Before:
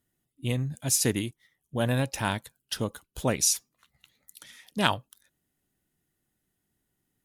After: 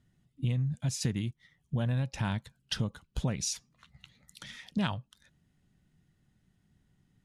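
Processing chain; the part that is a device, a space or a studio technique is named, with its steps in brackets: jukebox (low-pass 5.6 kHz 12 dB/octave; resonant low shelf 240 Hz +8 dB, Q 1.5; compression 4:1, threshold -35 dBFS, peak gain reduction 16.5 dB); trim +4.5 dB

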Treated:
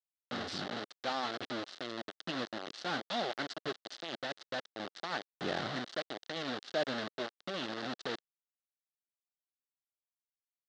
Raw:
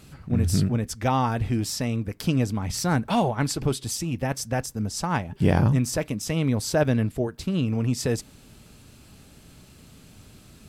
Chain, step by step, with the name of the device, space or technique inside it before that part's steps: 0.52–1.25 s: de-hum 64.84 Hz, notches 3; hand-held game console (bit crusher 4-bit; cabinet simulation 410–4500 Hz, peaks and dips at 470 Hz -5 dB, 960 Hz -10 dB, 2.4 kHz -10 dB, 3.9 kHz +4 dB); trim -8 dB

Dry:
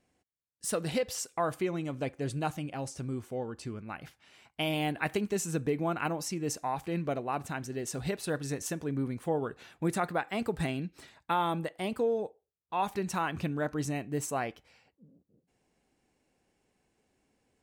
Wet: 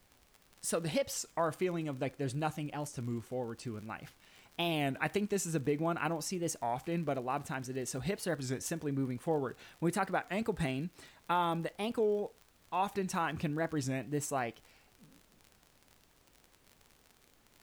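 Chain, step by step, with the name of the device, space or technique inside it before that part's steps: warped LP (warped record 33 1/3 rpm, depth 160 cents; crackle 49 per s -41 dBFS; pink noise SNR 31 dB); trim -2 dB

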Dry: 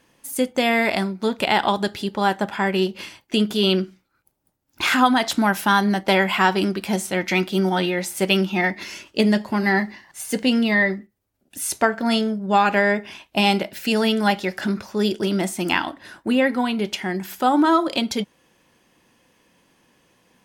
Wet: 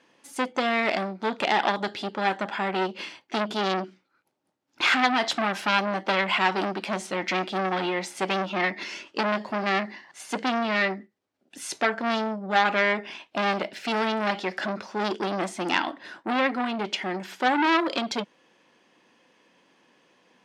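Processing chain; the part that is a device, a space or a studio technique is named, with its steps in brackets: public-address speaker with an overloaded transformer (transformer saturation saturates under 2.6 kHz; band-pass 240–5100 Hz)

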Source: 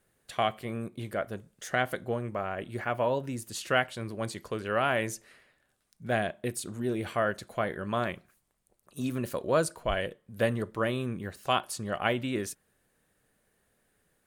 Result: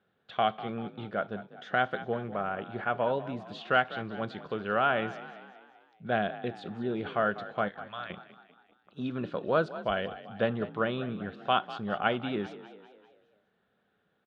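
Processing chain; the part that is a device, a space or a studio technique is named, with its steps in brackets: 7.68–8.10 s: amplifier tone stack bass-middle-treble 10-0-10; frequency-shifting delay pedal into a guitar cabinet (frequency-shifting echo 196 ms, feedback 51%, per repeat +41 Hz, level -15 dB; cabinet simulation 95–3600 Hz, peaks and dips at 200 Hz +7 dB, 440 Hz +4 dB, 760 Hz +6 dB, 1.4 kHz +8 dB, 2 kHz -4 dB, 3.5 kHz +7 dB); trim -3.5 dB

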